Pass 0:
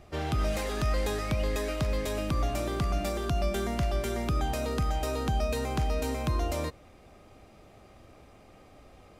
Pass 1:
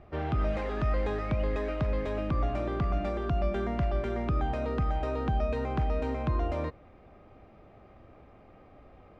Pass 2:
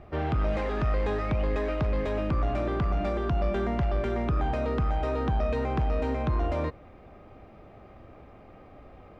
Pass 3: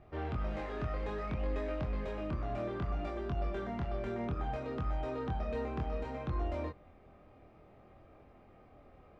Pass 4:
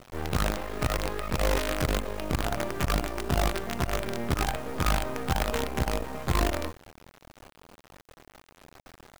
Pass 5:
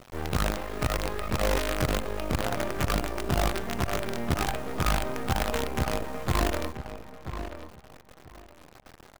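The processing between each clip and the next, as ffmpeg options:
ffmpeg -i in.wav -af "lowpass=2000" out.wav
ffmpeg -i in.wav -af "asoftclip=type=tanh:threshold=-24.5dB,volume=4.5dB" out.wav
ffmpeg -i in.wav -af "flanger=delay=22.5:depth=3.5:speed=0.61,volume=-6dB" out.wav
ffmpeg -i in.wav -af "acrusher=bits=6:dc=4:mix=0:aa=0.000001,volume=8dB" out.wav
ffmpeg -i in.wav -filter_complex "[0:a]asplit=2[link_01][link_02];[link_02]adelay=982,lowpass=frequency=2500:poles=1,volume=-10dB,asplit=2[link_03][link_04];[link_04]adelay=982,lowpass=frequency=2500:poles=1,volume=0.2,asplit=2[link_05][link_06];[link_06]adelay=982,lowpass=frequency=2500:poles=1,volume=0.2[link_07];[link_01][link_03][link_05][link_07]amix=inputs=4:normalize=0" out.wav

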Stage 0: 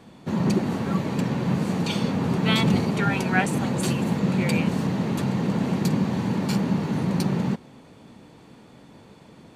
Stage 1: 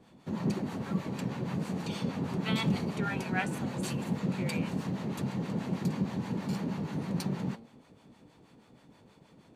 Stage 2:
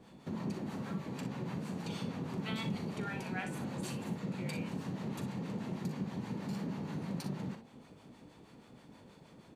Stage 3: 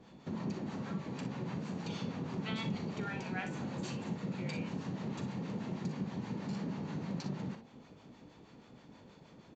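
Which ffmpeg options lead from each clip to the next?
ffmpeg -i in.wav -filter_complex "[0:a]bandreject=frequency=114.3:width_type=h:width=4,bandreject=frequency=228.6:width_type=h:width=4,bandreject=frequency=342.9:width_type=h:width=4,bandreject=frequency=457.2:width_type=h:width=4,bandreject=frequency=571.5:width_type=h:width=4,bandreject=frequency=685.8:width_type=h:width=4,bandreject=frequency=800.1:width_type=h:width=4,bandreject=frequency=914.4:width_type=h:width=4,bandreject=frequency=1028.7:width_type=h:width=4,bandreject=frequency=1143:width_type=h:width=4,bandreject=frequency=1257.3:width_type=h:width=4,bandreject=frequency=1371.6:width_type=h:width=4,bandreject=frequency=1485.9:width_type=h:width=4,bandreject=frequency=1600.2:width_type=h:width=4,bandreject=frequency=1714.5:width_type=h:width=4,bandreject=frequency=1828.8:width_type=h:width=4,bandreject=frequency=1943.1:width_type=h:width=4,bandreject=frequency=2057.4:width_type=h:width=4,bandreject=frequency=2171.7:width_type=h:width=4,bandreject=frequency=2286:width_type=h:width=4,bandreject=frequency=2400.3:width_type=h:width=4,bandreject=frequency=2514.6:width_type=h:width=4,bandreject=frequency=2628.9:width_type=h:width=4,bandreject=frequency=2743.2:width_type=h:width=4,bandreject=frequency=2857.5:width_type=h:width=4,bandreject=frequency=2971.8:width_type=h:width=4,bandreject=frequency=3086.1:width_type=h:width=4,bandreject=frequency=3200.4:width_type=h:width=4,bandreject=frequency=3314.7:width_type=h:width=4,bandreject=frequency=3429:width_type=h:width=4,bandreject=frequency=3543.3:width_type=h:width=4,bandreject=frequency=3657.6:width_type=h:width=4,bandreject=frequency=3771.9:width_type=h:width=4,bandreject=frequency=3886.2:width_type=h:width=4,bandreject=frequency=4000.5:width_type=h:width=4,bandreject=frequency=4114.8:width_type=h:width=4,bandreject=frequency=4229.1:width_type=h:width=4,bandreject=frequency=4343.4:width_type=h:width=4,bandreject=frequency=4457.7:width_type=h:width=4,bandreject=frequency=4572:width_type=h:width=4,acrossover=split=690[link_01][link_02];[link_01]aeval=exprs='val(0)*(1-0.7/2+0.7/2*cos(2*PI*6.3*n/s))':channel_layout=same[link_03];[link_02]aeval=exprs='val(0)*(1-0.7/2-0.7/2*cos(2*PI*6.3*n/s))':channel_layout=same[link_04];[link_03][link_04]amix=inputs=2:normalize=0,volume=-6dB" out.wav
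ffmpeg -i in.wav -filter_complex "[0:a]acompressor=threshold=-43dB:ratio=2,asplit=2[link_01][link_02];[link_02]aecho=0:1:41|60:0.282|0.299[link_03];[link_01][link_03]amix=inputs=2:normalize=0,volume=1dB" out.wav
ffmpeg -i in.wav -af "aresample=16000,aresample=44100" out.wav

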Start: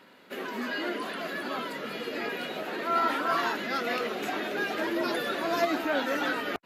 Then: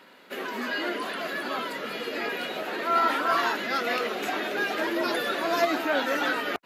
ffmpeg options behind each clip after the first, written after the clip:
ffmpeg -i in.wav -af "lowshelf=frequency=220:gain=-8.5,volume=3.5dB" out.wav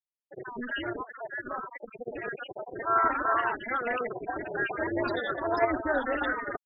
ffmpeg -i in.wav -af "afftfilt=real='re*gte(hypot(re,im),0.112)':imag='im*gte(hypot(re,im),0.112)':win_size=1024:overlap=0.75,aexciter=amount=8.9:drive=8.8:freq=5900,tremolo=f=240:d=0.667,volume=2dB" out.wav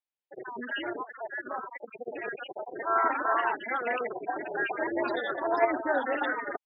ffmpeg -i in.wav -af "highpass=250,equalizer=frequency=840:width_type=q:width=4:gain=5,equalizer=frequency=1300:width_type=q:width=4:gain=-3,equalizer=frequency=2400:width_type=q:width=4:gain=3,lowpass=frequency=4200:width=0.5412,lowpass=frequency=4200:width=1.3066" out.wav

